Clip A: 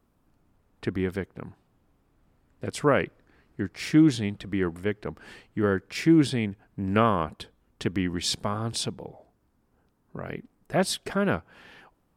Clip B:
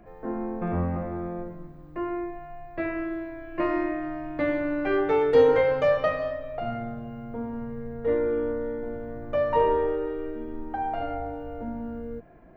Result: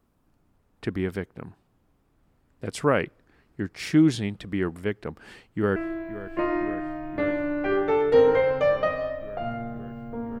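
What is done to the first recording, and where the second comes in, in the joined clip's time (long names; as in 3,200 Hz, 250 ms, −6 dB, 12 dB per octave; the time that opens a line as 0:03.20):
clip A
0:05.15–0:05.76: delay throw 520 ms, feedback 85%, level −14.5 dB
0:05.76: continue with clip B from 0:02.97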